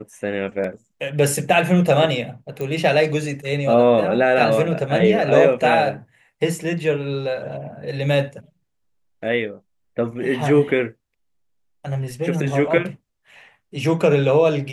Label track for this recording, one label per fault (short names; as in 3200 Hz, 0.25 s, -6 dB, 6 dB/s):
2.610000	2.610000	pop -16 dBFS